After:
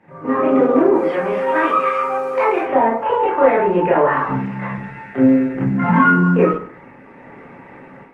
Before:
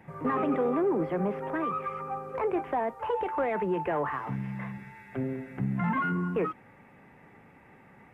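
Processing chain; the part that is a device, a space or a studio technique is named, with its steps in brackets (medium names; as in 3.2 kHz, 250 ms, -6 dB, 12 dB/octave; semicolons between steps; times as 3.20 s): high-pass 77 Hz 6 dB/octave; 0.93–2.63 s: tilt EQ +4.5 dB/octave; distance through air 76 m; far-field microphone of a smart speaker (reverberation RT60 0.50 s, pre-delay 21 ms, DRR -6 dB; high-pass 160 Hz 6 dB/octave; level rider gain up to 11 dB; Opus 24 kbps 48 kHz)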